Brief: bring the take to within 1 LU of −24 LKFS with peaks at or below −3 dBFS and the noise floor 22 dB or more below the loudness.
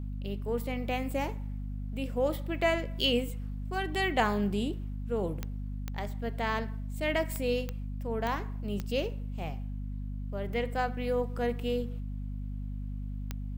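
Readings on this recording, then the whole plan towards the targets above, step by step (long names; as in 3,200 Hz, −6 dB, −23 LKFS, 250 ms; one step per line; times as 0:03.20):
number of clicks 7; mains hum 50 Hz; hum harmonics up to 250 Hz; level of the hum −34 dBFS; integrated loudness −33.0 LKFS; sample peak −12.5 dBFS; target loudness −24.0 LKFS
→ click removal
hum removal 50 Hz, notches 5
level +9 dB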